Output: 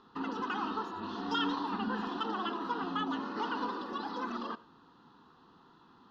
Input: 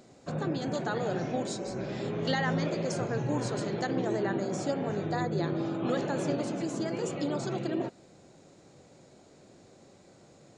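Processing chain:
low-pass filter 2,700 Hz 24 dB per octave
phaser with its sweep stopped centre 1,300 Hz, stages 6
on a send at −19 dB: convolution reverb RT60 0.50 s, pre-delay 102 ms
on the sum: wrong playback speed 45 rpm record played at 78 rpm

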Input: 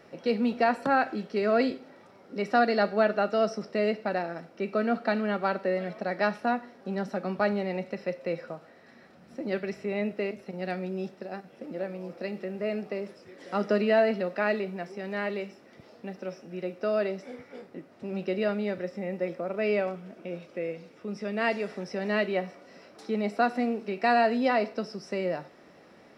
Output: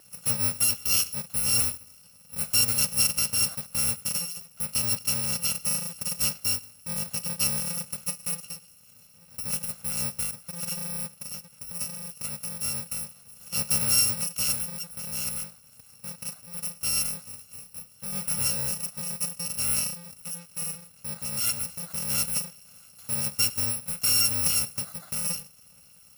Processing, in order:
samples in bit-reversed order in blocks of 128 samples
0:17.48–0:18.86: double-tracking delay 31 ms −6 dB

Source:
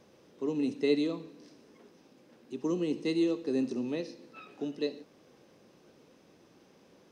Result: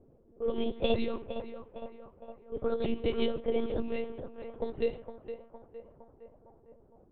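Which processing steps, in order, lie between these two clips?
pitch shifter swept by a sawtooth +5 semitones, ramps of 950 ms
harmonic and percussive parts rebalanced percussive +6 dB
low-pass that shuts in the quiet parts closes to 380 Hz, open at −25.5 dBFS
on a send: feedback echo with a band-pass in the loop 462 ms, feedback 68%, band-pass 860 Hz, level −8 dB
on the sum: one-pitch LPC vocoder at 8 kHz 230 Hz

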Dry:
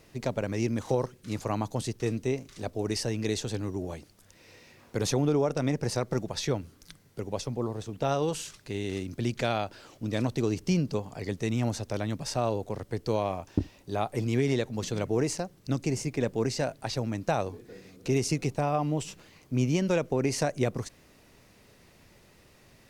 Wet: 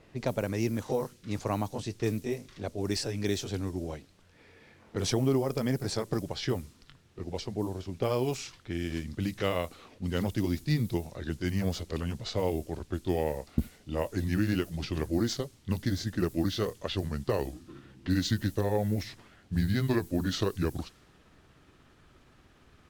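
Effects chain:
pitch glide at a constant tempo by −7.5 semitones starting unshifted
background noise violet −50 dBFS
low-pass that shuts in the quiet parts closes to 2,300 Hz, open at −25.5 dBFS

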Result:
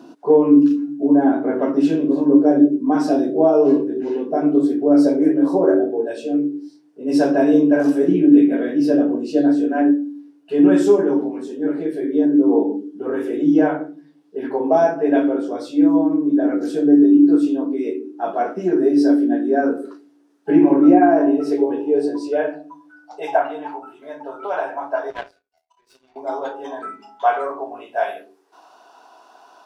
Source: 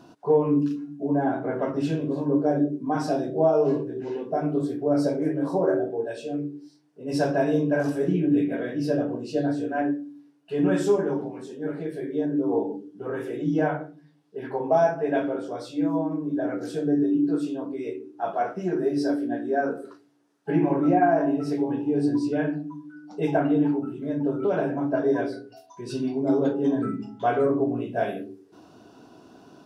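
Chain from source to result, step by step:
high-pass filter sweep 270 Hz → 850 Hz, 0:20.79–0:23.55
0:25.10–0:26.16: power curve on the samples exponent 2
level +3.5 dB

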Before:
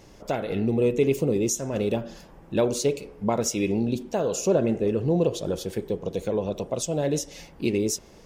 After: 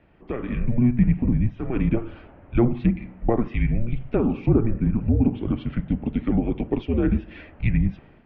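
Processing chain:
single-sideband voice off tune −240 Hz 160–3,000 Hz
treble cut that deepens with the level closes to 1,400 Hz, closed at −20 dBFS
automatic gain control gain up to 9.5 dB
level −4 dB

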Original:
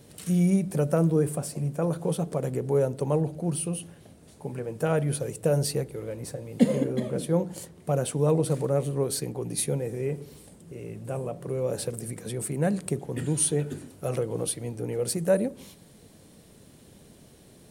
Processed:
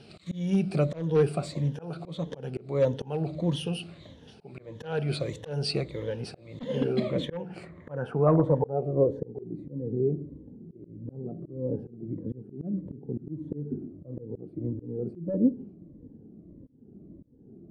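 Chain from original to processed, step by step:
rippled gain that drifts along the octave scale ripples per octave 1.1, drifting −1.6 Hz, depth 12 dB
hard clipping −14.5 dBFS, distortion −18 dB
low-pass filter sweep 3,700 Hz → 300 Hz, 0:06.99–0:09.64
volume swells 296 ms

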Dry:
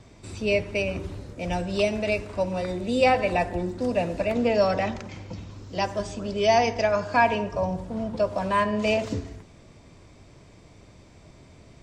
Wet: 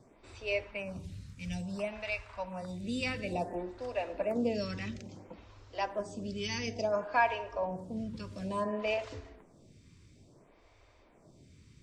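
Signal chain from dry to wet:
0:00.67–0:02.84: drawn EQ curve 200 Hz 0 dB, 340 Hz −15 dB, 960 Hz +1 dB
phaser with staggered stages 0.58 Hz
level −6 dB

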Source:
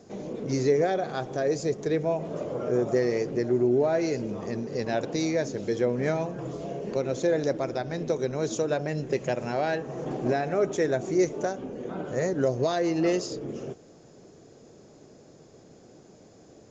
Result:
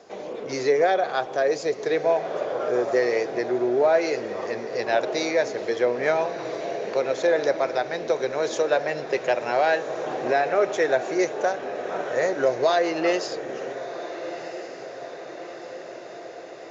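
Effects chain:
three-way crossover with the lows and the highs turned down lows −21 dB, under 460 Hz, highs −15 dB, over 5,000 Hz
feedback delay with all-pass diffusion 1,372 ms, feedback 65%, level −12.5 dB
level +8.5 dB

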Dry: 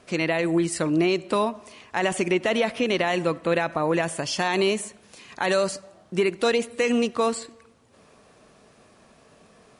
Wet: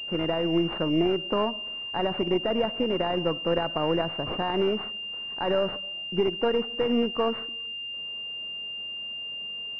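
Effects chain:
gain on one half-wave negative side −3 dB
switching amplifier with a slow clock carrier 2,800 Hz
level −1 dB

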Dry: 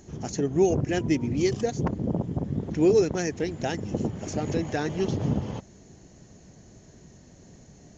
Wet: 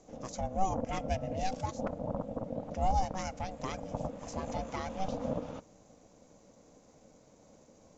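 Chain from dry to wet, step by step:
ring modulation 380 Hz
on a send: convolution reverb RT60 0.85 s, pre-delay 5 ms, DRR 23 dB
on the sum: level −6 dB

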